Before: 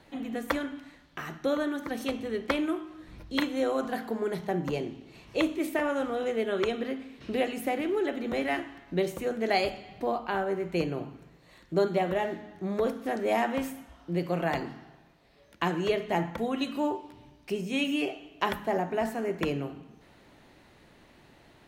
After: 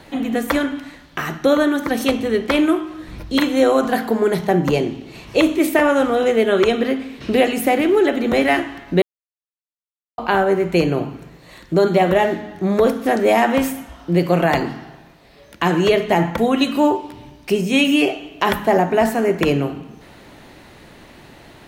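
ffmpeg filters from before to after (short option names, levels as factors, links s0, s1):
-filter_complex "[0:a]asplit=3[s0][s1][s2];[s0]atrim=end=9.02,asetpts=PTS-STARTPTS,afade=t=out:st=9.016:d=0.004:c=hsin[s3];[s1]atrim=start=9.02:end=10.18,asetpts=PTS-STARTPTS,volume=0[s4];[s2]atrim=start=10.18,asetpts=PTS-STARTPTS,afade=t=in:d=0.004:c=hsin[s5];[s3][s4][s5]concat=n=3:v=0:a=1,highshelf=f=9400:g=3.5,alimiter=level_in=7.5:limit=0.891:release=50:level=0:latency=1,volume=0.631"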